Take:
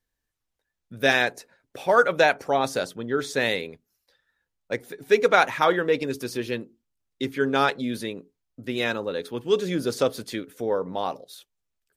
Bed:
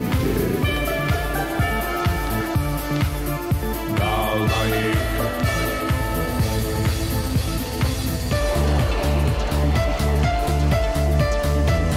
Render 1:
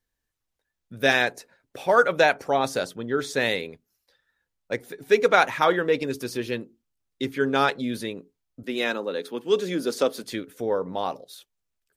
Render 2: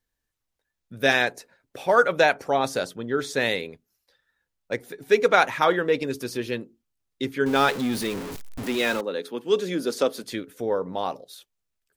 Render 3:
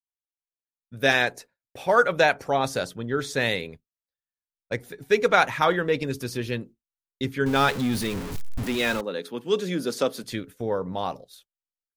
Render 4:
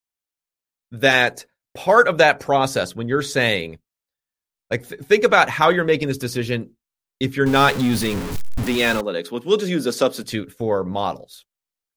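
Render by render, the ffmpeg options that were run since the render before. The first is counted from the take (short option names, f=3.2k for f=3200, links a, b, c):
-filter_complex "[0:a]asettb=1/sr,asplit=3[a][b][c];[a]atrim=end=8.634[d];[b]atrim=start=8.63:end=10.24,asetpts=PTS-STARTPTS,afade=t=in:d=0.004:c=qsin,afade=t=out:st=1.606:d=0.004:c=qsin,highpass=f=190:w=0.5412,highpass=f=190:w=1.3066[e];[c]atrim=start=10.236[f];[d][e]acrossfade=d=0.004:c1=hsin:c2=qsin[g];[g][f]acrossfade=d=0.004:c1=qsin:c2=hsin"
-filter_complex "[0:a]asettb=1/sr,asplit=3[a][b][c];[a]atrim=end=7.464[d];[b]atrim=start=7.46:end=9.01,asetpts=PTS-STARTPTS,afade=t=in:d=0.004:c=qsin,afade=t=out:st=1.546:d=0.004:c=qsin,aeval=exprs='val(0)+0.5*0.0376*sgn(val(0))':c=same[e];[c]atrim=start=9.006[f];[d][e]acrossfade=d=0.004:c1=hsin:c2=qsin[g];[g][f]acrossfade=d=0.004:c1=qsin:c2=hsin"
-af "agate=range=-33dB:threshold=-39dB:ratio=3:detection=peak,asubboost=boost=3:cutoff=170"
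-af "volume=6dB,alimiter=limit=-2dB:level=0:latency=1"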